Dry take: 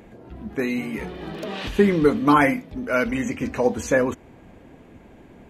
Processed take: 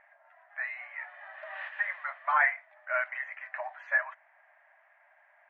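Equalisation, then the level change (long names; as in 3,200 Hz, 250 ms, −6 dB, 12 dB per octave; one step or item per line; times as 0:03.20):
linear-phase brick-wall high-pass 570 Hz
transistor ladder low-pass 2,000 Hz, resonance 70%
0.0 dB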